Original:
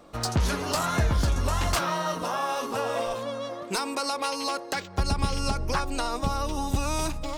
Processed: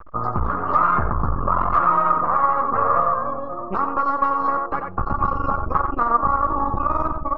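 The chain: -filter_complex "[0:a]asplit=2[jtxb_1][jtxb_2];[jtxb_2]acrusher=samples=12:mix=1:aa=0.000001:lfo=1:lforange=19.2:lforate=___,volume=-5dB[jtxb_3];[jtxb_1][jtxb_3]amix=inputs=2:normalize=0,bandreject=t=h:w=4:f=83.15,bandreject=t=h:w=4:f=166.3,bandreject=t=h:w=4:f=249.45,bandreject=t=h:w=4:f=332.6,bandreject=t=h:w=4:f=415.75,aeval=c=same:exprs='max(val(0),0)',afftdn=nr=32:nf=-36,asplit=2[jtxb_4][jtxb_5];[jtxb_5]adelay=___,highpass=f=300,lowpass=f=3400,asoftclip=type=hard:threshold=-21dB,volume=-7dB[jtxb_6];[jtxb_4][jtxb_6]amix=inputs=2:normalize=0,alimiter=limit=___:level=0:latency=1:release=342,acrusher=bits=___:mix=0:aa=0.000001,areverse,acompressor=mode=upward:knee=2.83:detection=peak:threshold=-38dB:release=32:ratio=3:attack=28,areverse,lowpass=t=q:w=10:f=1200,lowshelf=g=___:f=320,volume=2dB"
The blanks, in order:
0.9, 90, -16dB, 10, 2.5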